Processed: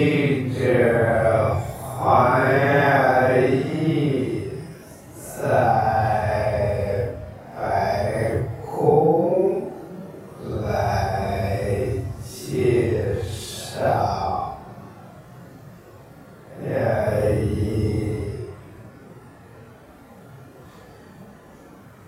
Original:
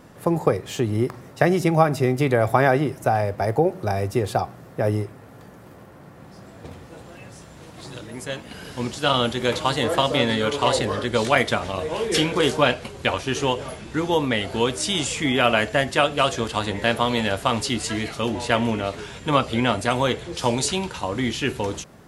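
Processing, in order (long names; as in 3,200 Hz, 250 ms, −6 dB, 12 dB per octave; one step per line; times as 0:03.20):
extreme stretch with random phases 6.5×, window 0.05 s, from 0:02.22
echo ahead of the sound 245 ms −21.5 dB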